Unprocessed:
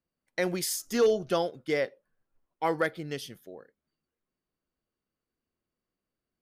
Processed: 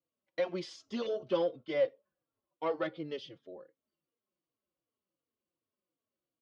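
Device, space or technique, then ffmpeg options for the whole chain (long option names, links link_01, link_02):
barber-pole flanger into a guitar amplifier: -filter_complex "[0:a]asplit=2[link_01][link_02];[link_02]adelay=3.7,afreqshift=-2.7[link_03];[link_01][link_03]amix=inputs=2:normalize=1,asoftclip=type=tanh:threshold=-24dB,highpass=88,equalizer=frequency=320:width_type=q:width=4:gain=6,equalizer=frequency=550:width_type=q:width=4:gain=9,equalizer=frequency=1100:width_type=q:width=4:gain=5,equalizer=frequency=1700:width_type=q:width=4:gain=-5,equalizer=frequency=3100:width_type=q:width=4:gain=5,lowpass=frequency=4500:width=0.5412,lowpass=frequency=4500:width=1.3066,volume=-4dB"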